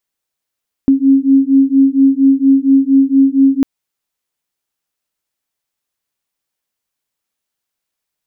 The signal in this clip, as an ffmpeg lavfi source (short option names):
-f lavfi -i "aevalsrc='0.316*(sin(2*PI*269*t)+sin(2*PI*273.3*t))':d=2.75:s=44100"